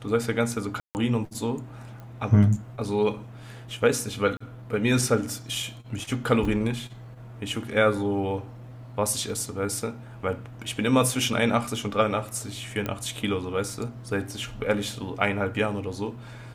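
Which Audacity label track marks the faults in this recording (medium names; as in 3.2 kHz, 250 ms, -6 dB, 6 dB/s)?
0.800000	0.950000	dropout 149 ms
2.000000	2.000000	pop -30 dBFS
4.370000	4.410000	dropout 35 ms
6.450000	6.450000	dropout 3.1 ms
12.860000	12.860000	pop -15 dBFS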